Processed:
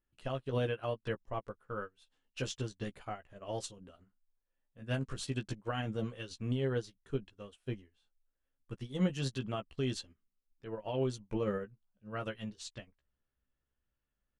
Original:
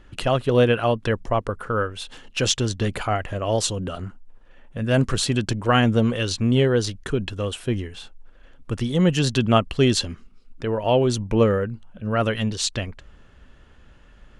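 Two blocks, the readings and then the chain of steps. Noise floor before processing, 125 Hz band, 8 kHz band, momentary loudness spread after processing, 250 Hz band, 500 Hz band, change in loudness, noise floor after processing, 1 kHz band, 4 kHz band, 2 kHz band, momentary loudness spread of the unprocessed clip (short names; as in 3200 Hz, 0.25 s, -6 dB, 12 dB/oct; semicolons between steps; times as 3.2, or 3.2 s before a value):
-50 dBFS, -15.5 dB, -20.0 dB, 14 LU, -16.5 dB, -16.0 dB, -16.0 dB, under -85 dBFS, -18.0 dB, -19.0 dB, -17.0 dB, 13 LU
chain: doubler 15 ms -5 dB; limiter -12 dBFS, peak gain reduction 8 dB; upward expander 2.5:1, over -35 dBFS; gain -9 dB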